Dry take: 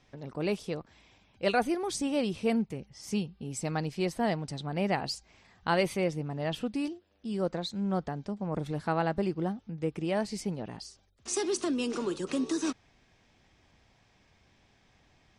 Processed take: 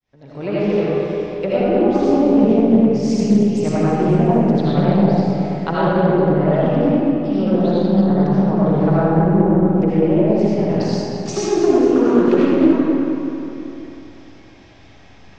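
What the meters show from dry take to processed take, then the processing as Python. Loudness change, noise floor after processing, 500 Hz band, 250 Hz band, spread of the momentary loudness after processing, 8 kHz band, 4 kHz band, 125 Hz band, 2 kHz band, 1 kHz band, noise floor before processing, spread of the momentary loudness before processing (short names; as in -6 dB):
+16.0 dB, -44 dBFS, +16.5 dB, +18.0 dB, 9 LU, n/a, +4.0 dB, +18.0 dB, +6.5 dB, +12.5 dB, -66 dBFS, 9 LU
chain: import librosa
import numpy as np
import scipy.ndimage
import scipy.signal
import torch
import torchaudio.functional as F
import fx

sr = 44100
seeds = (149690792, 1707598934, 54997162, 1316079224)

p1 = fx.fade_in_head(x, sr, length_s=0.69)
p2 = scipy.signal.sosfilt(scipy.signal.butter(6, 7200.0, 'lowpass', fs=sr, output='sos'), p1)
p3 = fx.env_lowpass_down(p2, sr, base_hz=410.0, full_db=-25.0)
p4 = p3 + fx.echo_feedback(p3, sr, ms=225, feedback_pct=52, wet_db=-11, dry=0)
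p5 = fx.rev_freeverb(p4, sr, rt60_s=3.0, hf_ratio=0.55, predelay_ms=40, drr_db=-9.5)
p6 = fx.doppler_dist(p5, sr, depth_ms=0.27)
y = p6 * 10.0 ** (7.5 / 20.0)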